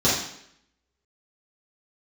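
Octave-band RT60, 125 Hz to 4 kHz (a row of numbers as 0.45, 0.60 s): 0.65, 0.75, 0.75, 0.70, 0.75, 0.70 s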